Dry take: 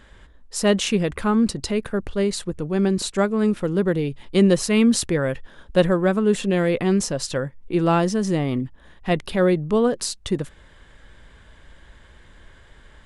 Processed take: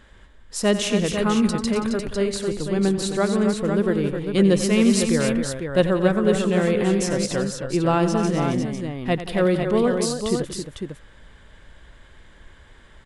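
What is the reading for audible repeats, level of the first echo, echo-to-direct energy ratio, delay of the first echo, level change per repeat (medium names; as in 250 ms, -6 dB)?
5, -12.5 dB, -3.0 dB, 92 ms, no regular repeats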